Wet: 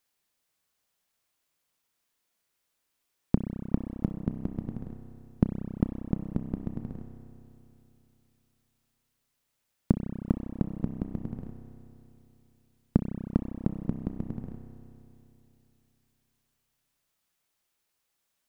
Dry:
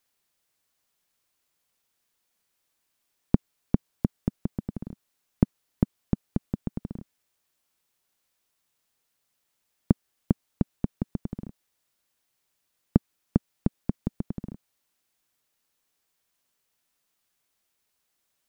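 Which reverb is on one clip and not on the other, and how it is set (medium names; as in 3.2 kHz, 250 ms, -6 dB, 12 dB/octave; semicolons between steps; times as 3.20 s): spring tank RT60 3 s, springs 31 ms, chirp 55 ms, DRR 5.5 dB; trim -2.5 dB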